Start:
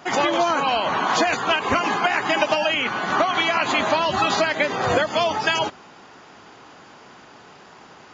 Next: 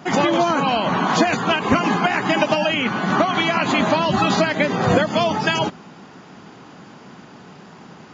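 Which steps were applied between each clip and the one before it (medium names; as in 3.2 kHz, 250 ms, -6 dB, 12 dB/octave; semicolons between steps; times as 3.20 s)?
peaking EQ 180 Hz +13.5 dB 1.5 oct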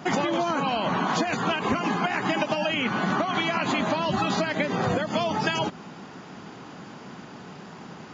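compression, threshold -22 dBFS, peak gain reduction 11 dB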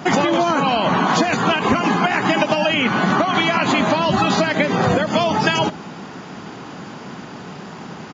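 delay 74 ms -18 dB; trim +8 dB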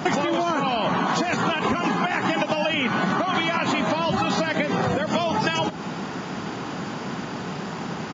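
compression 6:1, threshold -23 dBFS, peak gain reduction 11 dB; trim +3 dB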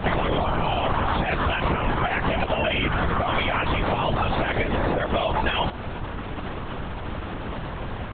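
LPC vocoder at 8 kHz whisper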